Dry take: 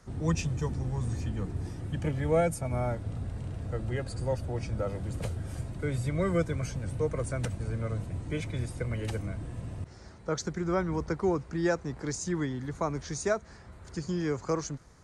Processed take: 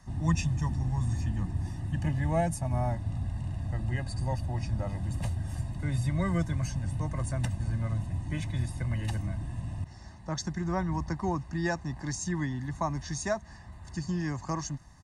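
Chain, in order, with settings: comb 1.1 ms, depth 88%; trim -2 dB

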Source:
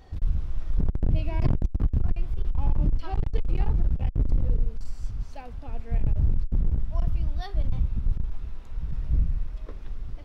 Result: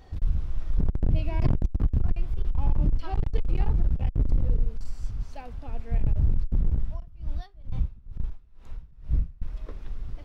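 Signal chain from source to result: 6.88–9.42 s: logarithmic tremolo 2.2 Hz, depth 24 dB

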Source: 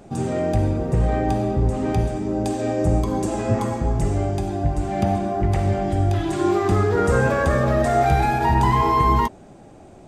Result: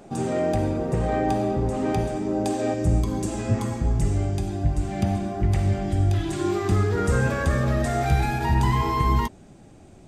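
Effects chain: peaking EQ 61 Hz -8.5 dB 2.3 oct, from 2.74 s 700 Hz

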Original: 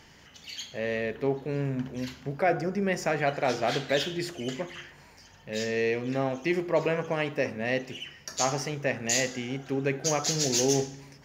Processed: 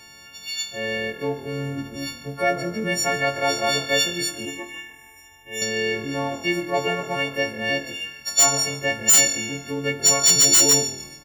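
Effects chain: partials quantised in pitch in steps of 4 st; dynamic bell 7.1 kHz, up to +5 dB, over -34 dBFS, Q 2.5; 4.45–5.62 s: static phaser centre 900 Hz, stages 8; frequency-shifting echo 144 ms, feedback 39%, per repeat -40 Hz, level -17 dB; wavefolder -10 dBFS; trim +1.5 dB

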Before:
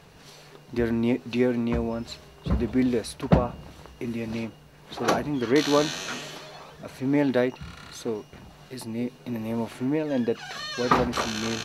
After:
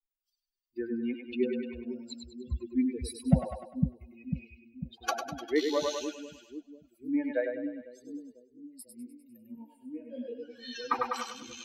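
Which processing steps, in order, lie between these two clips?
expander on every frequency bin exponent 3; 7.31–8.79 s: tone controls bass -8 dB, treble -11 dB; two-band feedback delay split 310 Hz, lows 498 ms, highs 100 ms, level -4.5 dB; harmonic tremolo 2.1 Hz, depth 50%, crossover 480 Hz; 9.55–10.76 s: detune thickener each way 42 cents

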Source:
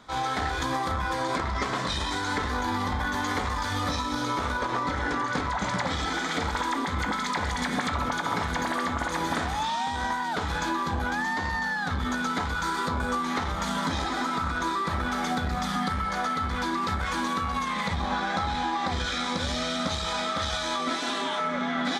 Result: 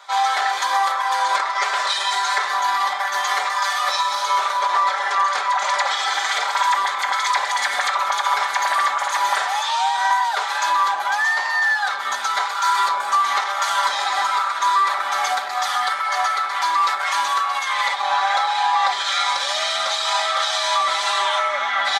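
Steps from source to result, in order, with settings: high-pass 680 Hz 24 dB/octave; comb 5.1 ms, depth 92%; trim +7 dB

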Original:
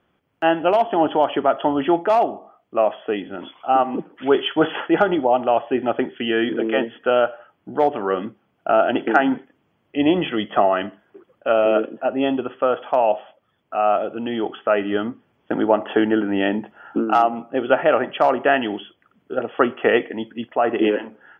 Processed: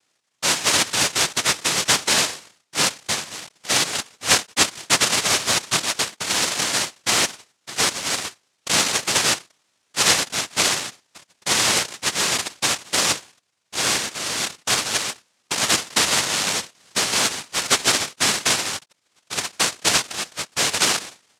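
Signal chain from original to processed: dead-time distortion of 0.26 ms; noise-vocoded speech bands 1; trim -1.5 dB

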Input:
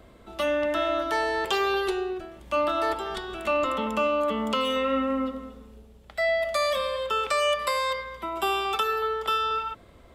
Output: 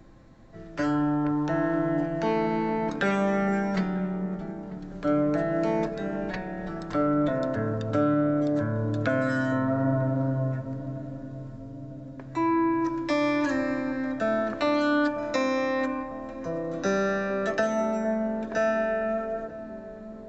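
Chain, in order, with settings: on a send: tape echo 474 ms, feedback 80%, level -12 dB, low-pass 1.2 kHz; on the sum: speed mistake 15 ips tape played at 7.5 ips

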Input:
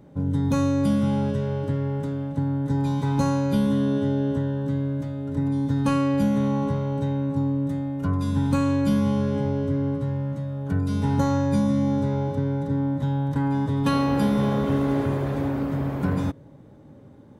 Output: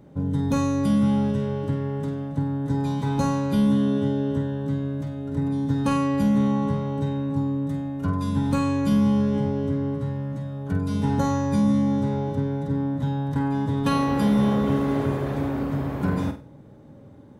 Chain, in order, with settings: flutter echo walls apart 8.2 m, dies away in 0.33 s

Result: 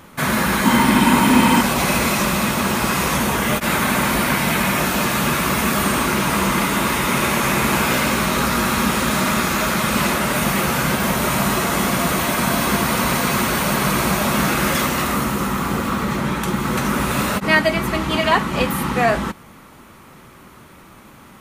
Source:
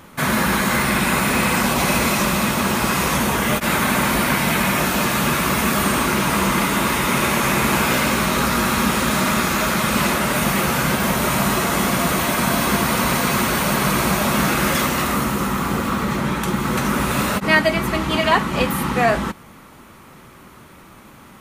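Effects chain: 0.64–1.61 s: small resonant body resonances 260/920/3100 Hz, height 13 dB

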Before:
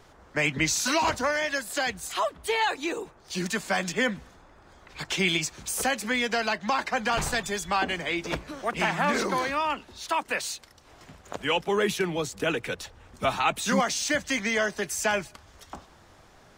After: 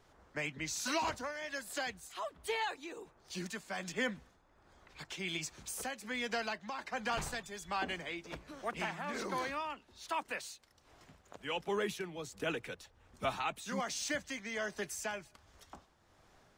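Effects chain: tremolo triangle 1.3 Hz, depth 60%; trim -9 dB

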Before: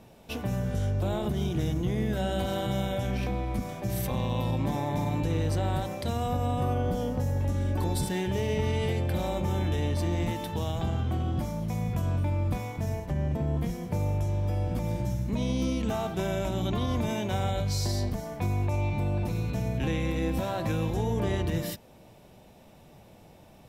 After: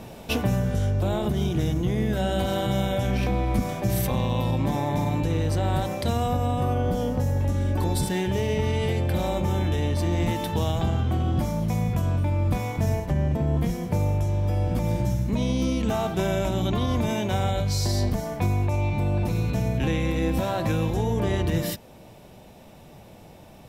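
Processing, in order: gain riding 0.5 s; trim +4.5 dB

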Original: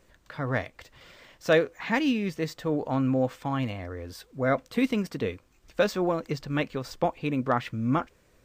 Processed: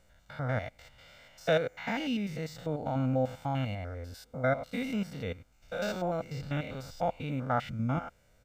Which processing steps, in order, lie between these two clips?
spectrogram pixelated in time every 100 ms; comb 1.4 ms, depth 65%; trim -3.5 dB

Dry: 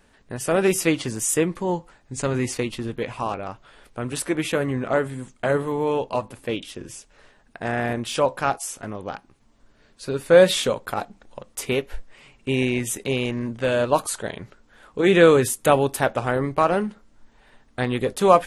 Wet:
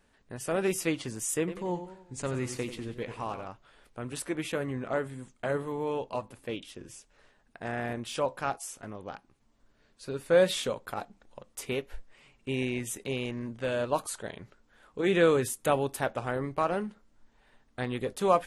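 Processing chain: 1.38–3.47 s: modulated delay 93 ms, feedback 47%, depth 105 cents, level -11 dB; trim -9 dB

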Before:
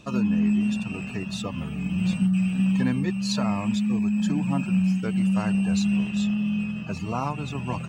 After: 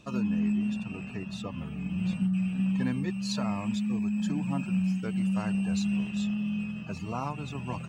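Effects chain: 0.52–2.81 s: treble shelf 4.5 kHz -7.5 dB; trim -5.5 dB

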